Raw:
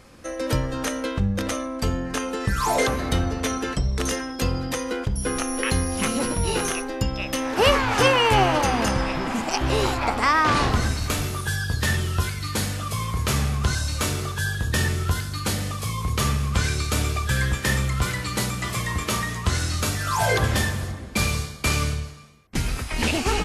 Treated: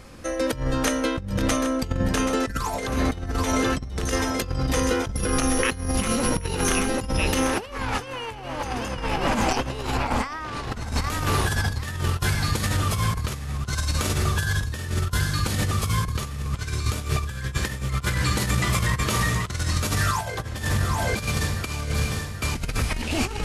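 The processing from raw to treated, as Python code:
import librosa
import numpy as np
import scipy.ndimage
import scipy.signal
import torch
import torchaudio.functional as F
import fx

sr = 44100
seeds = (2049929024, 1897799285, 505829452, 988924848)

y = fx.low_shelf(x, sr, hz=86.0, db=6.0)
y = fx.echo_feedback(y, sr, ms=780, feedback_pct=52, wet_db=-9)
y = fx.over_compress(y, sr, threshold_db=-24.0, ratio=-0.5)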